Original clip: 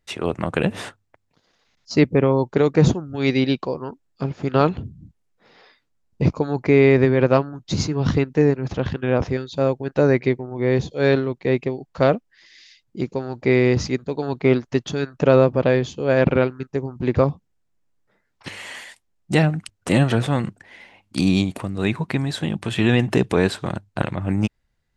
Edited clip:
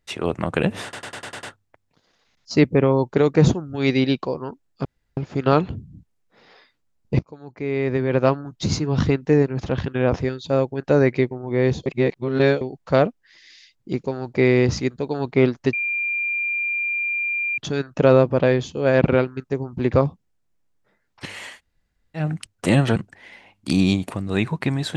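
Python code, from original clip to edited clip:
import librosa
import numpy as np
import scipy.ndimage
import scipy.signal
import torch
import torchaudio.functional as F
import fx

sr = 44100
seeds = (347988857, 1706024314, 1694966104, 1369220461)

y = fx.edit(x, sr, fx.stutter(start_s=0.83, slice_s=0.1, count=7),
    fx.insert_room_tone(at_s=4.25, length_s=0.32),
    fx.fade_in_from(start_s=6.27, length_s=1.16, curve='qua', floor_db=-19.5),
    fx.reverse_span(start_s=10.94, length_s=0.75),
    fx.insert_tone(at_s=14.81, length_s=1.85, hz=2390.0, db=-21.0),
    fx.room_tone_fill(start_s=18.76, length_s=0.69, crossfade_s=0.16),
    fx.cut(start_s=20.19, length_s=0.25), tone=tone)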